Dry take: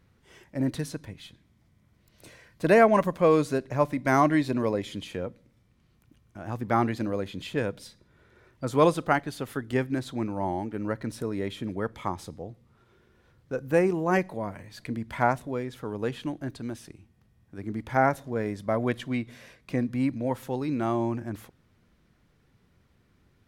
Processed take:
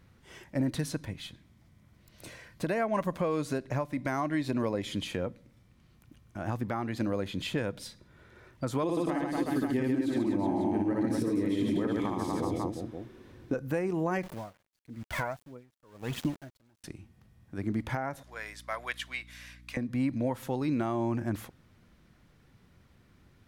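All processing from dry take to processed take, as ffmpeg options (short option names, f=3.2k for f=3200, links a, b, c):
-filter_complex "[0:a]asettb=1/sr,asplit=3[a][b][c];[a]atrim=end=8.834[d];[b]atrim=start=8.83:end=13.54,asetpts=PTS-STARTPTS,afade=t=in:d=0.004:c=qsin,afade=t=out:st=4.706:d=0.004:c=qsin,equalizer=f=300:t=o:w=0.73:g=11.5,bandreject=f=1.4k:w=7.5,aecho=1:1:60|138|239.4|371.2|542.6:0.794|0.631|0.501|0.398|0.316,atrim=end_sample=207711[e];[c]atrim=start=13.536[f];[d][e]acrossfade=d=0.004:c1=hsin:c2=qsin[g];[g][f]acrossfade=d=0.004:c1=qsin:c2=hsin,asettb=1/sr,asplit=3[h][i][j];[h]atrim=end=14.234[k];[i]atrim=start=14.23:end=16.84,asetpts=PTS-STARTPTS,afade=t=in:d=0.004:c=qsin,afade=t=out:st=2.606:d=0.004:c=qsin,aphaser=in_gain=1:out_gain=1:delay=2.1:decay=0.6:speed=1.5:type=triangular,aeval=exprs='val(0)*gte(abs(val(0)),0.0119)':c=same,aeval=exprs='val(0)*pow(10,-34*(0.5-0.5*cos(2*PI*1*n/s))/20)':c=same[l];[j]atrim=start=16.836[m];[k][l]acrossfade=d=0.004:c1=hsin:c2=qsin[n];[n][m]acrossfade=d=0.004:c1=qsin:c2=hsin,asettb=1/sr,asplit=3[o][p][q];[o]atrim=end=18.234[r];[p]atrim=start=18.23:end=19.77,asetpts=PTS-STARTPTS,afade=t=in:d=0.004:c=qsin,afade=t=out:st=1.536:d=0.004:c=qsin,highpass=1.5k,aeval=exprs='val(0)+0.00158*(sin(2*PI*60*n/s)+sin(2*PI*2*60*n/s)/2+sin(2*PI*3*60*n/s)/3+sin(2*PI*4*60*n/s)/4+sin(2*PI*5*60*n/s)/5)':c=same[s];[q]atrim=start=19.766[t];[r][s]acrossfade=d=0.004:c1=hsin:c2=qsin[u];[u][t]acrossfade=d=0.004:c1=qsin:c2=hsin,equalizer=f=430:t=o:w=0.29:g=-3.5,acompressor=threshold=-27dB:ratio=6,alimiter=limit=-23dB:level=0:latency=1:release=398,volume=3.5dB"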